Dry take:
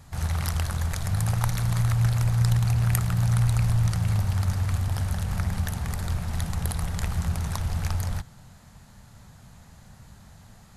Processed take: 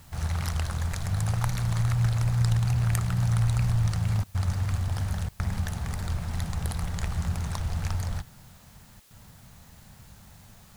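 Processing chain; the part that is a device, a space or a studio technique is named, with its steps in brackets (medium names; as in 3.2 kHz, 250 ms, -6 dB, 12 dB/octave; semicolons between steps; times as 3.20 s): worn cassette (low-pass 9.8 kHz 12 dB/octave; wow and flutter; level dips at 4.24/5.29/9.00 s, 105 ms -27 dB; white noise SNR 31 dB); trim -2 dB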